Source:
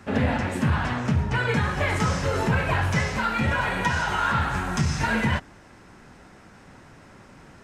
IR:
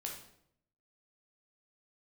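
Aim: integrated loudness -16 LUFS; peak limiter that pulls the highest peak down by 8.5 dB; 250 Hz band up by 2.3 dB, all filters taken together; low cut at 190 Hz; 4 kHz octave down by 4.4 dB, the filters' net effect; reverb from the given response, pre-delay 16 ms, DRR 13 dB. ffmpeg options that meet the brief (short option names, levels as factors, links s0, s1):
-filter_complex "[0:a]highpass=190,equalizer=f=250:t=o:g=5.5,equalizer=f=4000:t=o:g=-6.5,alimiter=limit=0.133:level=0:latency=1,asplit=2[s0][s1];[1:a]atrim=start_sample=2205,adelay=16[s2];[s1][s2]afir=irnorm=-1:irlink=0,volume=0.251[s3];[s0][s3]amix=inputs=2:normalize=0,volume=3.55"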